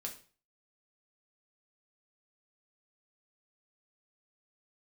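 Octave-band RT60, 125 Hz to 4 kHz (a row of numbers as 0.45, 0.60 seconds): 0.45, 0.40, 0.40, 0.40, 0.40, 0.40 seconds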